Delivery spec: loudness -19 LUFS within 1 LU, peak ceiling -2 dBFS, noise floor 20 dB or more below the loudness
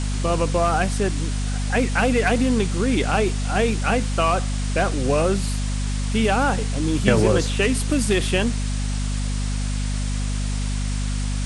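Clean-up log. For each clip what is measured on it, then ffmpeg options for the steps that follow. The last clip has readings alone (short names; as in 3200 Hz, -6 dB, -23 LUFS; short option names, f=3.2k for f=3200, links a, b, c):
hum 50 Hz; harmonics up to 250 Hz; hum level -21 dBFS; noise floor -24 dBFS; noise floor target -42 dBFS; loudness -22.0 LUFS; peak -1.5 dBFS; loudness target -19.0 LUFS
-> -af "bandreject=f=50:t=h:w=6,bandreject=f=100:t=h:w=6,bandreject=f=150:t=h:w=6,bandreject=f=200:t=h:w=6,bandreject=f=250:t=h:w=6"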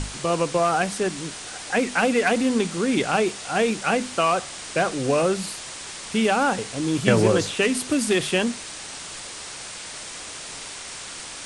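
hum none; noise floor -37 dBFS; noise floor target -44 dBFS
-> -af "afftdn=nr=7:nf=-37"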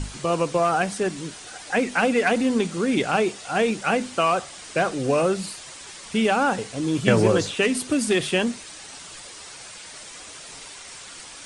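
noise floor -41 dBFS; noise floor target -43 dBFS
-> -af "afftdn=nr=6:nf=-41"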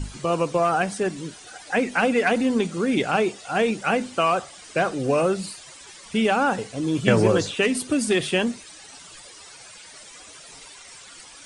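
noise floor -45 dBFS; loudness -23.0 LUFS; peak -2.5 dBFS; loudness target -19.0 LUFS
-> -af "volume=4dB,alimiter=limit=-2dB:level=0:latency=1"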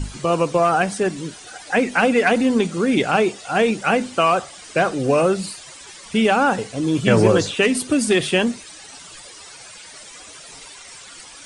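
loudness -19.0 LUFS; peak -2.0 dBFS; noise floor -41 dBFS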